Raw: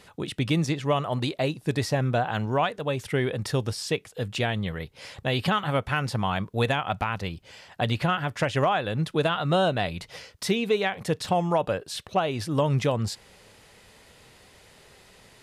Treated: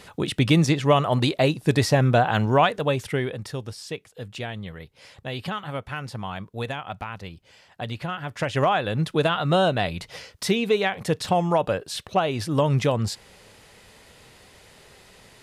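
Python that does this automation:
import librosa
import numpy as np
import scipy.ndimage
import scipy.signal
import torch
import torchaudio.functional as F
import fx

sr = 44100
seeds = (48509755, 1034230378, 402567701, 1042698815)

y = fx.gain(x, sr, db=fx.line((2.83, 6.0), (3.53, -6.0), (8.1, -6.0), (8.67, 2.5)))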